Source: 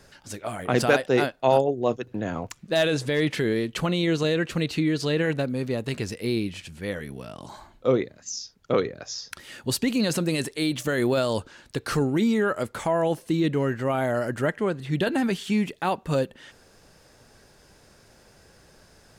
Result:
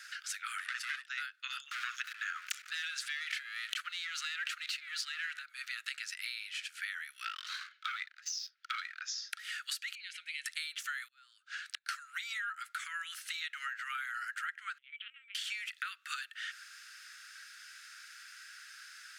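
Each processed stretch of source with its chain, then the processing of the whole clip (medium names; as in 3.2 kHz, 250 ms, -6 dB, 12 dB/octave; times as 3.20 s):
0.58–1.03 s: comb filter that takes the minimum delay 1.1 ms + low-pass 11 kHz
1.71–5.39 s: waveshaping leveller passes 2 + level flattener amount 100%
7.25–9.01 s: low-pass 5.2 kHz 24 dB/octave + bass shelf 310 Hz -11 dB + waveshaping leveller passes 2
9.95–10.46 s: vowel filter i + peaking EQ 10 kHz +9 dB 0.42 oct
11.08–11.89 s: treble shelf 9.4 kHz -5 dB + compression 2:1, threshold -28 dBFS + inverted gate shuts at -25 dBFS, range -28 dB
14.78–15.35 s: cascade formant filter i + LPC vocoder at 8 kHz pitch kept
whole clip: steep high-pass 1.3 kHz 96 dB/octave; tilt EQ -2.5 dB/octave; compression 12:1, threshold -48 dBFS; trim +11.5 dB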